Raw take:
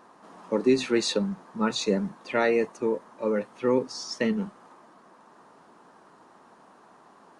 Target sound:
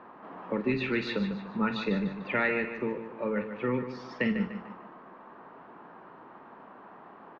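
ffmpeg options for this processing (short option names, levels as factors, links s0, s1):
-filter_complex "[0:a]lowpass=f=2700:w=0.5412,lowpass=f=2700:w=1.3066,acrossover=split=180|1500[s0][s1][s2];[s1]acompressor=threshold=0.0158:ratio=6[s3];[s0][s3][s2]amix=inputs=3:normalize=0,asplit=2[s4][s5];[s5]adelay=48,volume=0.266[s6];[s4][s6]amix=inputs=2:normalize=0,aecho=1:1:148|296|444|592:0.335|0.131|0.0509|0.0199,volume=1.58"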